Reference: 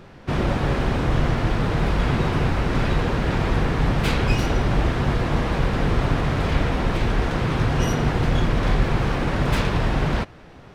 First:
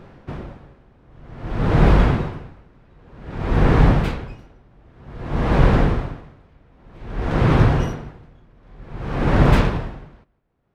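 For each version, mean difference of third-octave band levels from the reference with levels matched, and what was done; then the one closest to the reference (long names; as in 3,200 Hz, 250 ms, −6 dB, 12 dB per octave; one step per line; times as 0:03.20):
14.5 dB: high-shelf EQ 2,300 Hz −9.5 dB
automatic gain control gain up to 7.5 dB
on a send: feedback echo with a low-pass in the loop 156 ms, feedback 35%, low-pass 3,600 Hz, level −16 dB
on the sum: tremolo with a sine in dB 0.53 Hz, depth 39 dB
level +2 dB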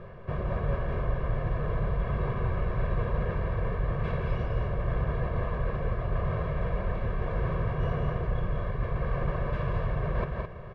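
8.0 dB: low-pass filter 1,600 Hz 12 dB per octave
comb filter 1.8 ms, depth 87%
reversed playback
downward compressor 10 to 1, threshold −25 dBFS, peak gain reduction 16.5 dB
reversed playback
multi-tap delay 171/214 ms −5.5/−6.5 dB
level −1.5 dB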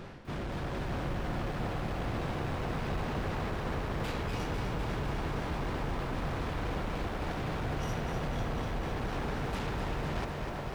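3.5 dB: reversed playback
downward compressor 6 to 1, threshold −31 dBFS, peak gain reduction 16.5 dB
reversed playback
gain into a clipping stage and back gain 33.5 dB
feedback echo with a band-pass in the loop 355 ms, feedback 83%, band-pass 720 Hz, level −3.5 dB
feedback echo at a low word length 250 ms, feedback 80%, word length 10 bits, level −6.5 dB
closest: third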